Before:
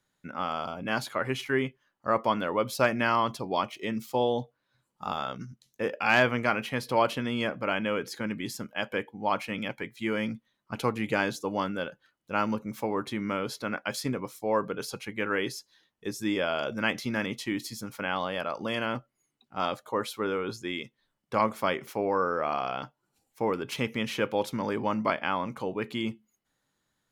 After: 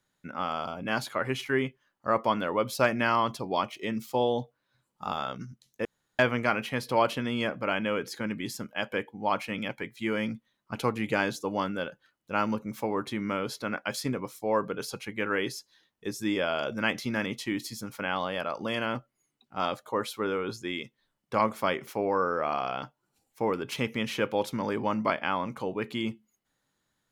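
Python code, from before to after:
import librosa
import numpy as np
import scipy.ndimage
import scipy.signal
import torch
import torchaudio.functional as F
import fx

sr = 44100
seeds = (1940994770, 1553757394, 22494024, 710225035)

y = fx.edit(x, sr, fx.room_tone_fill(start_s=5.85, length_s=0.34), tone=tone)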